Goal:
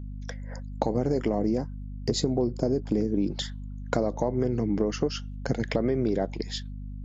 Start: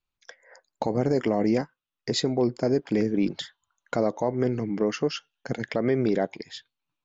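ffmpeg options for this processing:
ffmpeg -i in.wav -af "agate=range=-7dB:threshold=-55dB:ratio=16:detection=peak,asetnsamples=nb_out_samples=441:pad=0,asendcmd='1.39 equalizer g -14;3.3 equalizer g -7',equalizer=frequency=2200:width=0.71:gain=-5.5,acompressor=threshold=-31dB:ratio=6,aeval=exprs='val(0)+0.00631*(sin(2*PI*50*n/s)+sin(2*PI*2*50*n/s)/2+sin(2*PI*3*50*n/s)/3+sin(2*PI*4*50*n/s)/4+sin(2*PI*5*50*n/s)/5)':channel_layout=same,volume=8.5dB" -ar 32000 -c:a libvorbis -b:a 48k out.ogg

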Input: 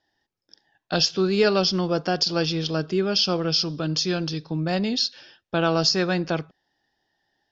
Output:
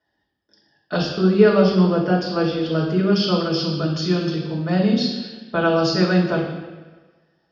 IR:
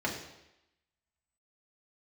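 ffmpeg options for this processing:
-filter_complex "[0:a]asettb=1/sr,asplit=3[link_01][link_02][link_03];[link_01]atrim=end=1.014[link_04];[link_02]atrim=start=1.01:end=2.67,asetpts=PTS-STARTPTS,afade=type=in:duration=0.004:curve=qsin,afade=type=out:start_time=1.656:duration=0.004:curve=qsin,lowpass=frequency=2900:poles=1[link_05];[link_03]atrim=start=2.666[link_06];[link_04][link_05]acrossfade=duration=0.004:curve1=hsin:curve2=qsin[link_07];[link_07][link_06]acrossfade=duration=0.004:curve1=qsin:curve2=hsin[link_08];[1:a]atrim=start_sample=2205,asetrate=29547,aresample=44100[link_09];[link_08][link_09]afir=irnorm=-1:irlink=0,volume=-7dB"

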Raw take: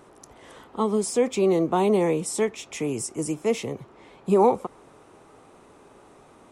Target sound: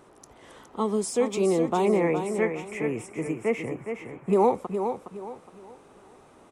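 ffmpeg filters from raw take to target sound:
ffmpeg -i in.wav -filter_complex "[0:a]asettb=1/sr,asplit=3[link_01][link_02][link_03];[link_01]atrim=end=1.854[link_04];[link_02]atrim=start=1.85:end=4.33,asetpts=PTS-STARTPTS,afade=type=in:duration=0.004:curve=qsin,afade=type=out:start_time=2.476:duration=0.004:curve=qsin,highshelf=frequency=2900:width_type=q:width=3:gain=-10.5[link_05];[link_03]atrim=start=4.326[link_06];[link_04][link_05]acrossfade=duration=0.004:curve1=hsin:curve2=qsin[link_07];[link_07][link_06]acrossfade=duration=0.004:curve1=qsin:curve2=hsin,aecho=1:1:415|830|1245|1660:0.422|0.131|0.0405|0.0126,volume=-2.5dB" out.wav

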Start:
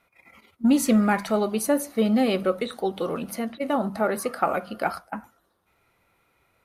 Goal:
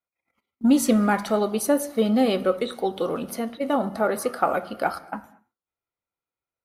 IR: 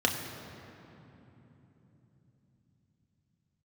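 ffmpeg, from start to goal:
-filter_complex "[0:a]agate=range=-28dB:threshold=-48dB:ratio=16:detection=peak,asplit=2[link_01][link_02];[1:a]atrim=start_sample=2205,afade=type=out:start_time=0.29:duration=0.01,atrim=end_sample=13230,lowshelf=frequency=210:gain=-9[link_03];[link_02][link_03]afir=irnorm=-1:irlink=0,volume=-20dB[link_04];[link_01][link_04]amix=inputs=2:normalize=0"

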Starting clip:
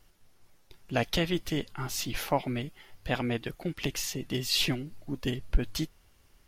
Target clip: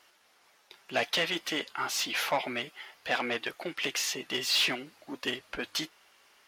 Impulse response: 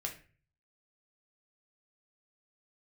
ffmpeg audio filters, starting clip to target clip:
-filter_complex "[0:a]asplit=2[link_01][link_02];[link_02]highpass=frequency=720:poles=1,volume=19dB,asoftclip=type=tanh:threshold=-12dB[link_03];[link_01][link_03]amix=inputs=2:normalize=0,lowpass=frequency=3000:poles=1,volume=-6dB,flanger=delay=3.1:depth=2.2:regen=-67:speed=0.57:shape=triangular,highpass=frequency=660:poles=1,volume=2dB"

